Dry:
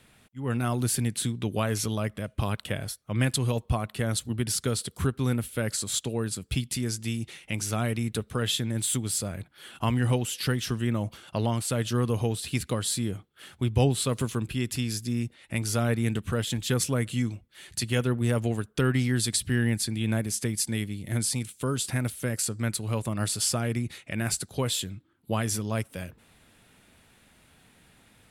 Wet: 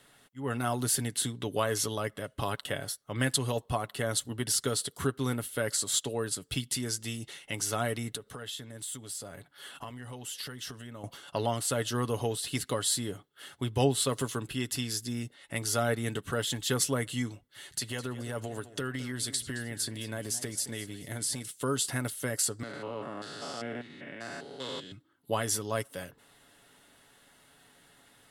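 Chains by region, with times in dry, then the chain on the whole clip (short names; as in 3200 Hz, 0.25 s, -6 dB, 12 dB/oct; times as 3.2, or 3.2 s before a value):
8.15–11.04 notch 350 Hz, Q 11 + compressor 8:1, threshold -35 dBFS
17.35–21.51 compressor 10:1, threshold -27 dBFS + warbling echo 0.214 s, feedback 39%, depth 150 cents, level -15 dB
22.63–24.92 stepped spectrum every 0.2 s + LPF 7300 Hz + three-band isolator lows -22 dB, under 160 Hz, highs -16 dB, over 3800 Hz
whole clip: tone controls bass -10 dB, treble 0 dB; notch 2400 Hz, Q 6; comb 7.1 ms, depth 39%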